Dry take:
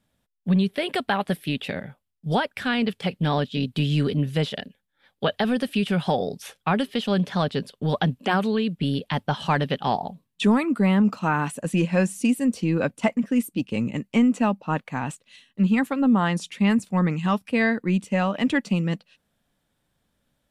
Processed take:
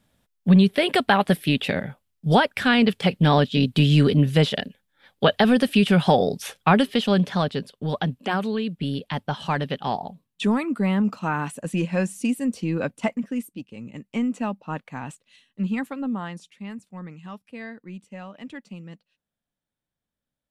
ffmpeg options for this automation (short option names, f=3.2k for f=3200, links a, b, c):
-af "volume=14.5dB,afade=t=out:st=6.72:d=0.96:silence=0.398107,afade=t=out:st=13.06:d=0.69:silence=0.251189,afade=t=in:st=13.75:d=0.49:silence=0.354813,afade=t=out:st=15.78:d=0.76:silence=0.298538"